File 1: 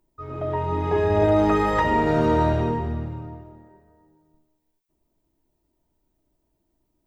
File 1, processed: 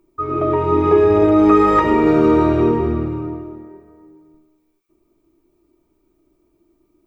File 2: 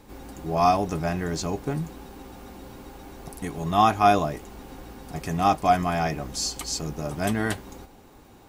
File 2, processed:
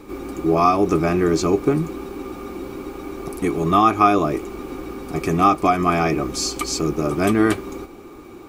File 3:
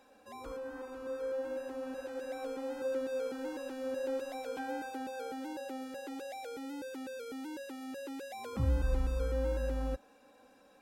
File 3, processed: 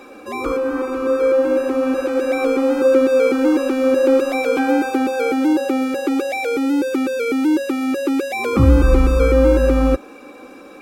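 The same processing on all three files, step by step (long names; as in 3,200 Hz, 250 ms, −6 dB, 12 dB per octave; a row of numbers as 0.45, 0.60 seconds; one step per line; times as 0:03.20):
downward compressor 3 to 1, threshold −22 dBFS
hollow resonant body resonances 350/1,200/2,300 Hz, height 15 dB, ringing for 30 ms
normalise the peak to −1.5 dBFS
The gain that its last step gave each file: +4.0, +4.0, +17.0 decibels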